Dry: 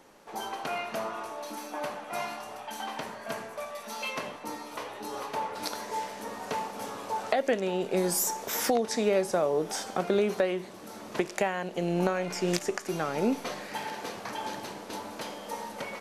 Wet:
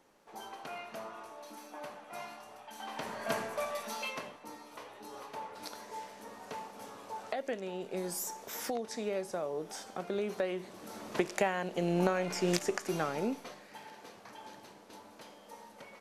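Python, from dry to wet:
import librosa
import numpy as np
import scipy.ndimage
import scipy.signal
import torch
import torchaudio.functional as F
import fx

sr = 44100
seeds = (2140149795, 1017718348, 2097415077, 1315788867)

y = fx.gain(x, sr, db=fx.line((2.73, -10.0), (3.22, 2.0), (3.75, 2.0), (4.38, -10.0), (10.09, -10.0), (10.94, -2.0), (13.02, -2.0), (13.6, -14.0)))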